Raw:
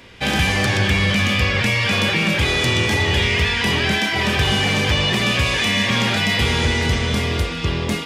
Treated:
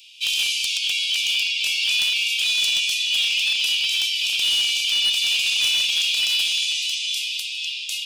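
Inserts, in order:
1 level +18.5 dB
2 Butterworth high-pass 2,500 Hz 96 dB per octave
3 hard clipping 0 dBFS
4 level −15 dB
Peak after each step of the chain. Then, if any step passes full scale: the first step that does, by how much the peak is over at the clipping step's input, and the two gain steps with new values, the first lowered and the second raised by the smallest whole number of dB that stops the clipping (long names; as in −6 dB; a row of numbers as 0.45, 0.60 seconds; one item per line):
+10.5, +8.0, 0.0, −15.0 dBFS
step 1, 8.0 dB
step 1 +10.5 dB, step 4 −7 dB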